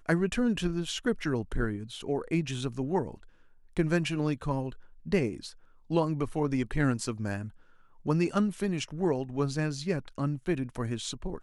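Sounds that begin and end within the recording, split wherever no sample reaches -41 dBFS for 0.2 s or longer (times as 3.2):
3.77–4.74
5.06–5.5
5.9–7.49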